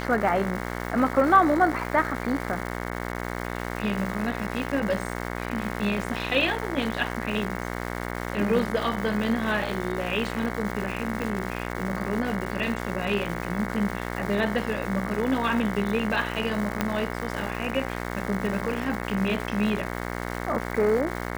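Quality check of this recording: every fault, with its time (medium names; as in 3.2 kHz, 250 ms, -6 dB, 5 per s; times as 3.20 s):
buzz 60 Hz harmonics 37 -32 dBFS
crackle 580 per s -33 dBFS
11.22 s: pop
16.81 s: pop -9 dBFS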